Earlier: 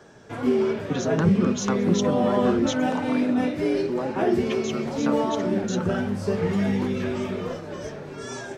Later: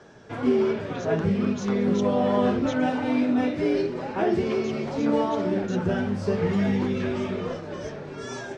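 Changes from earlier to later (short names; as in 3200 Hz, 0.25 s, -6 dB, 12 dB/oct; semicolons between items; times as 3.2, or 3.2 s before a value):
speech -8.5 dB; master: add LPF 6200 Hz 12 dB/oct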